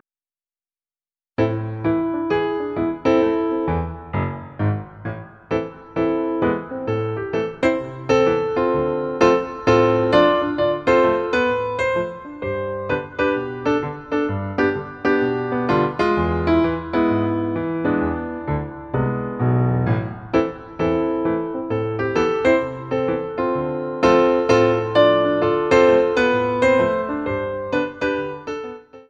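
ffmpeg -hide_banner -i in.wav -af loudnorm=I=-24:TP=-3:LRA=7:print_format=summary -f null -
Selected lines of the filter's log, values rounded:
Input Integrated:    -20.2 LUFS
Input True Peak:      -1.5 dBTP
Input LRA:             6.2 LU
Input Threshold:     -30.3 LUFS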